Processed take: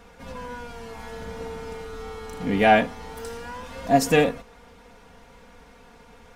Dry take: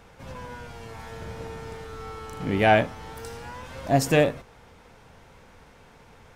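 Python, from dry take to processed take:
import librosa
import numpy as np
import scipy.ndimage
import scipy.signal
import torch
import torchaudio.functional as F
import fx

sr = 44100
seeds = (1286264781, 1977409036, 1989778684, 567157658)

y = x + 0.71 * np.pad(x, (int(4.2 * sr / 1000.0), 0))[:len(x)]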